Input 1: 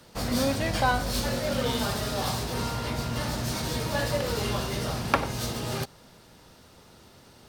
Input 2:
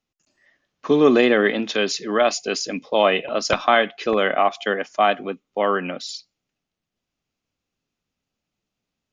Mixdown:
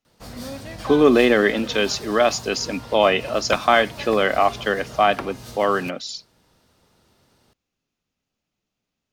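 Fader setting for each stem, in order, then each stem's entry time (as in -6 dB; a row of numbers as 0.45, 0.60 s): -8.0, +0.5 dB; 0.05, 0.00 s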